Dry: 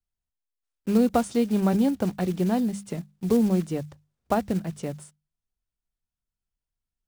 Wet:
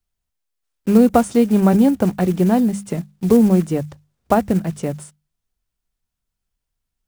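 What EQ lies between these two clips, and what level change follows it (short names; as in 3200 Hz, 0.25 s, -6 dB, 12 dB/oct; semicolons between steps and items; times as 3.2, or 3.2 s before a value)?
dynamic EQ 4100 Hz, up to -6 dB, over -52 dBFS, Q 1.1; +8.5 dB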